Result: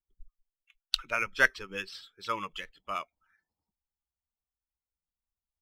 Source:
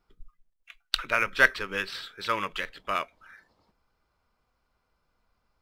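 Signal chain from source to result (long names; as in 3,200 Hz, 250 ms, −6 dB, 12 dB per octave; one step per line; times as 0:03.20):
spectral dynamics exaggerated over time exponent 1.5
dynamic equaliser 5,900 Hz, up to +5 dB, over −48 dBFS, Q 1.1
level −3 dB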